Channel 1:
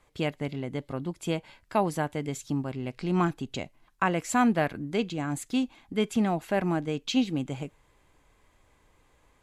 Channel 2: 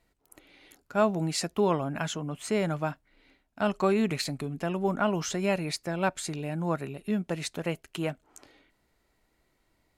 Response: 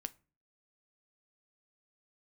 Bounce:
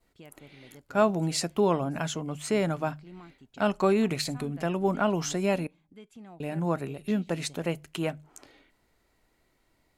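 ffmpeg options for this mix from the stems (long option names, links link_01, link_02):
-filter_complex "[0:a]alimiter=limit=-20.5dB:level=0:latency=1:release=278,volume=-18.5dB[link_01];[1:a]adynamicequalizer=threshold=0.00562:dfrequency=1900:dqfactor=0.81:tfrequency=1900:tqfactor=0.81:attack=5:release=100:ratio=0.375:range=2:mode=cutabove:tftype=bell,bandreject=frequency=50:width_type=h:width=6,bandreject=frequency=100:width_type=h:width=6,bandreject=frequency=150:width_type=h:width=6,volume=-1dB,asplit=3[link_02][link_03][link_04];[link_02]atrim=end=5.67,asetpts=PTS-STARTPTS,afade=type=out:start_time=5.666:duration=0.004:curve=hsin[link_05];[link_03]atrim=start=5.67:end=6.4,asetpts=PTS-STARTPTS,volume=0[link_06];[link_04]atrim=start=6.4,asetpts=PTS-STARTPTS,afade=type=in:duration=0.004:curve=hsin[link_07];[link_05][link_06][link_07]concat=n=3:v=0:a=1,asplit=2[link_08][link_09];[link_09]volume=-6dB[link_10];[2:a]atrim=start_sample=2205[link_11];[link_10][link_11]afir=irnorm=-1:irlink=0[link_12];[link_01][link_08][link_12]amix=inputs=3:normalize=0"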